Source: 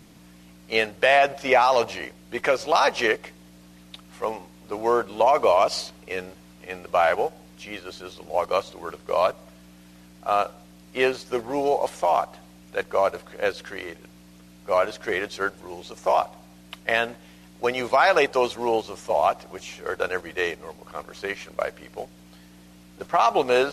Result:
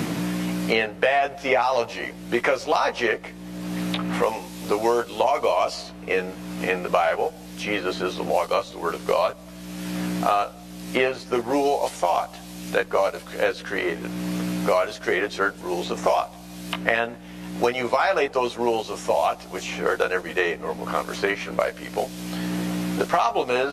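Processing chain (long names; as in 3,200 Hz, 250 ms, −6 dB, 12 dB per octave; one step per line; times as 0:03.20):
double-tracking delay 17 ms −4.5 dB
multiband upward and downward compressor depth 100%
level −1 dB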